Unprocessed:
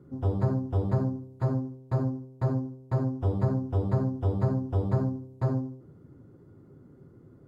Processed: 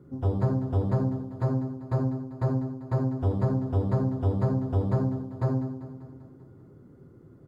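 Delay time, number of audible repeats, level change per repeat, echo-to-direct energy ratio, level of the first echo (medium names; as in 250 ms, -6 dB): 196 ms, 5, -4.5 dB, -11.0 dB, -13.0 dB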